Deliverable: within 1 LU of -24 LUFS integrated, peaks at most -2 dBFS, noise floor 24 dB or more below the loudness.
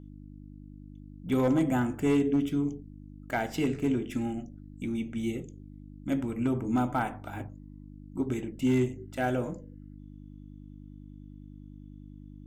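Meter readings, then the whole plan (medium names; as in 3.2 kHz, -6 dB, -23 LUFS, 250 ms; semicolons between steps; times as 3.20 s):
clipped samples 0.3%; clipping level -19.0 dBFS; hum 50 Hz; highest harmonic 300 Hz; hum level -45 dBFS; loudness -30.0 LUFS; peak level -19.0 dBFS; loudness target -24.0 LUFS
-> clip repair -19 dBFS; de-hum 50 Hz, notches 6; trim +6 dB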